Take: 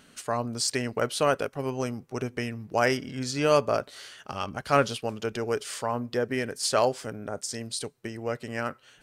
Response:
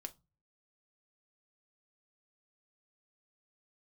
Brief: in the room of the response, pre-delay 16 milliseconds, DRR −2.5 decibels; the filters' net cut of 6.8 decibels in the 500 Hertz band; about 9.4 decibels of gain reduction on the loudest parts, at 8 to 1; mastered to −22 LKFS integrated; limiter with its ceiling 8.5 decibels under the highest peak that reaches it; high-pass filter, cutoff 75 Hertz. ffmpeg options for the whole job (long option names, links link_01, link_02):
-filter_complex "[0:a]highpass=75,equalizer=frequency=500:width_type=o:gain=-8.5,acompressor=threshold=-29dB:ratio=8,alimiter=level_in=1dB:limit=-24dB:level=0:latency=1,volume=-1dB,asplit=2[link_01][link_02];[1:a]atrim=start_sample=2205,adelay=16[link_03];[link_02][link_03]afir=irnorm=-1:irlink=0,volume=6.5dB[link_04];[link_01][link_04]amix=inputs=2:normalize=0,volume=10.5dB"